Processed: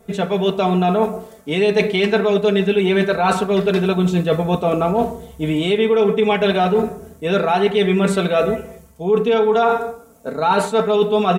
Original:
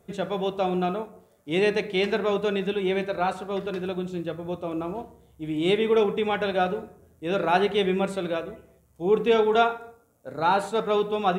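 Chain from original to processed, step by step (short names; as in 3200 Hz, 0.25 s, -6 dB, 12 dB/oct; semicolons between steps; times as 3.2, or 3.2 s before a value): AGC gain up to 12 dB; limiter -7 dBFS, peak gain reduction 5.5 dB; comb 4.5 ms, depth 74%; reverse; compressor, threshold -21 dBFS, peak gain reduction 14 dB; reverse; gain +7.5 dB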